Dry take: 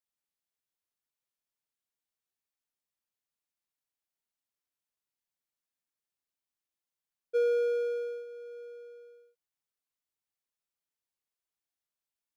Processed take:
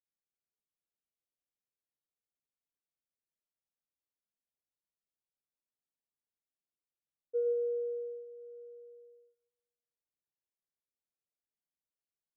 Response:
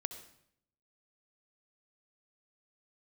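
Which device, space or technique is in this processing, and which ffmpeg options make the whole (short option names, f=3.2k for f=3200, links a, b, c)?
next room: -filter_complex "[0:a]lowpass=f=700:w=0.5412,lowpass=f=700:w=1.3066[a];[1:a]atrim=start_sample=2205[b];[a][b]afir=irnorm=-1:irlink=0,volume=-3dB"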